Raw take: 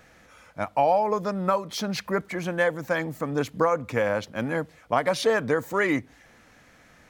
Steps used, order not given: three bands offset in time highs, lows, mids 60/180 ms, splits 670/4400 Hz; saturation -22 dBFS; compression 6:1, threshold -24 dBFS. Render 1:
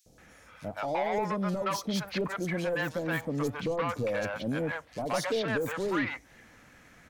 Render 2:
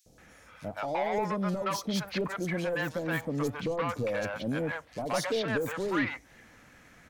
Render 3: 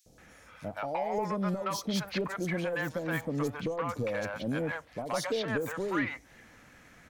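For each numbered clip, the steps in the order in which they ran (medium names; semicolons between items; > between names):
saturation > three bands offset in time > compression; saturation > compression > three bands offset in time; compression > saturation > three bands offset in time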